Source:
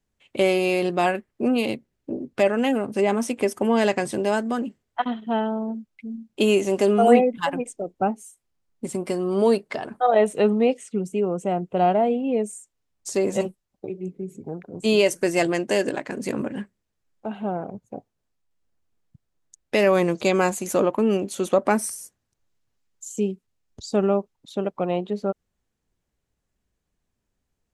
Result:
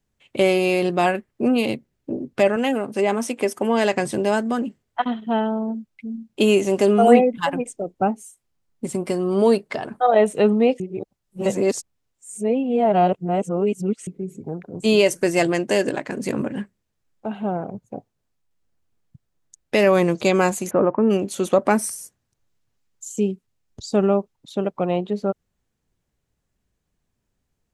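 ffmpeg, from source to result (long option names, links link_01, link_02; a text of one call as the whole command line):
ffmpeg -i in.wav -filter_complex "[0:a]asettb=1/sr,asplit=3[link_01][link_02][link_03];[link_01]atrim=end=2.564[link_04];[link_02]atrim=start=2.56:end=3.94,asetpts=PTS-STARTPTS,afade=type=in:duration=0.004:curve=qsin,afade=type=out:start_time=1.376:duration=0.004:curve=qsin,highpass=frequency=270:poles=1[link_05];[link_03]atrim=start=3.936[link_06];[link_04][link_05]acrossfade=duration=0.004:curve1=hsin:curve2=qsin[link_07];[link_07][link_06]acrossfade=duration=0.004:curve1=qsin:curve2=hsin,asplit=3[link_08][link_09][link_10];[link_08]afade=type=out:start_time=20.69:duration=0.02[link_11];[link_09]lowpass=frequency=1800:width=0.5412,lowpass=frequency=1800:width=1.3066,afade=type=in:start_time=20.69:duration=0.02,afade=type=out:start_time=21.09:duration=0.02[link_12];[link_10]afade=type=in:start_time=21.09:duration=0.02[link_13];[link_11][link_12][link_13]amix=inputs=3:normalize=0,asplit=3[link_14][link_15][link_16];[link_14]atrim=end=10.802[link_17];[link_15]atrim=start=10.798:end=14.072,asetpts=PTS-STARTPTS,areverse[link_18];[link_16]atrim=start=14.068[link_19];[link_17][link_18]acrossfade=duration=0.004:curve1=hsin:curve2=hsin[link_20];[link_20][link_19]acrossfade=duration=0.004:curve1=hsin:curve2=hsin,equalizer=frequency=130:width=1.5:gain=3.5,volume=2dB" out.wav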